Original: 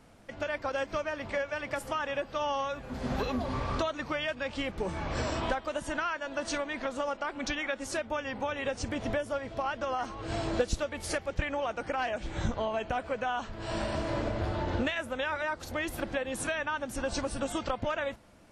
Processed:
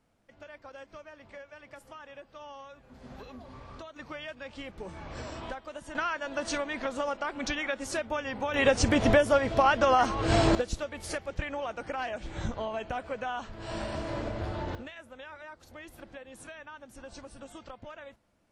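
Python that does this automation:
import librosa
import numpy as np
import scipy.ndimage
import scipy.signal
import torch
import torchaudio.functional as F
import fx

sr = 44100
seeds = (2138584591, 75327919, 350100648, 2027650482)

y = fx.gain(x, sr, db=fx.steps((0.0, -14.5), (3.96, -8.0), (5.95, 1.0), (8.54, 10.0), (10.55, -2.5), (14.75, -13.5)))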